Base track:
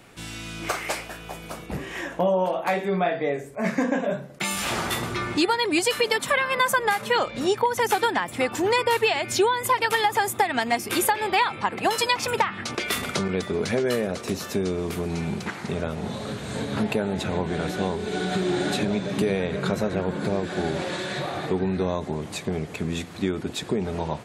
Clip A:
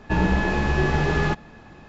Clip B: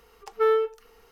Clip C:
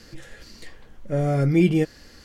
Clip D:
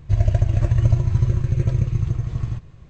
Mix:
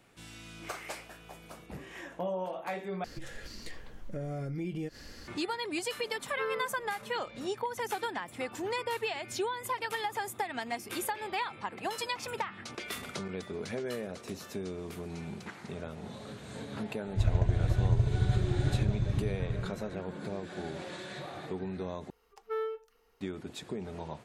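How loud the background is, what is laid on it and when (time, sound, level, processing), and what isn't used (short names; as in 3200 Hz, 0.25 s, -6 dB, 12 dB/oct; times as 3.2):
base track -12.5 dB
3.04 replace with C -0.5 dB + compressor, threshold -34 dBFS
5.99 add B -14.5 dB
17.07 add D -9.5 dB + mismatched tape noise reduction decoder only
22.1 replace with B -13 dB
not used: A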